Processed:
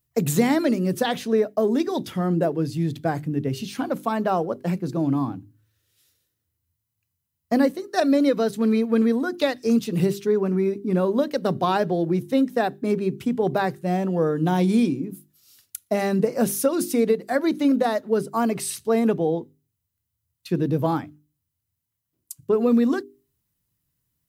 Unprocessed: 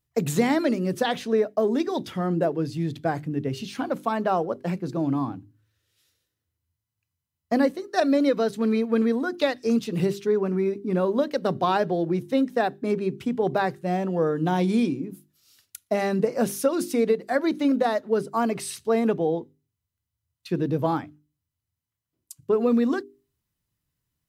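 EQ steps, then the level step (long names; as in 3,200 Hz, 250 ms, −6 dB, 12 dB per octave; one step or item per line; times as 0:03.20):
parametric band 160 Hz +3.5 dB 2.3 octaves
high-shelf EQ 8,800 Hz +10.5 dB
0.0 dB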